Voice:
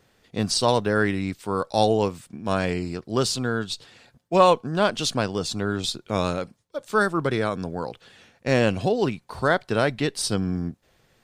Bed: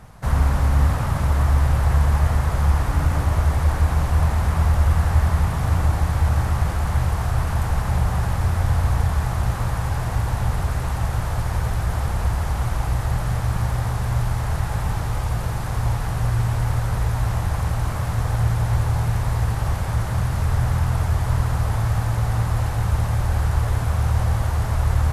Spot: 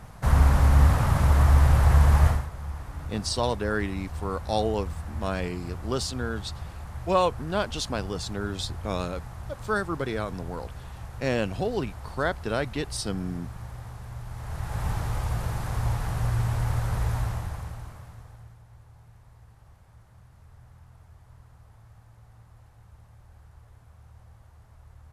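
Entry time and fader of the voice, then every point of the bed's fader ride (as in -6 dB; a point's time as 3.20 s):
2.75 s, -6.0 dB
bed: 2.28 s -0.5 dB
2.50 s -17 dB
14.23 s -17 dB
14.86 s -5 dB
17.16 s -5 dB
18.64 s -31.5 dB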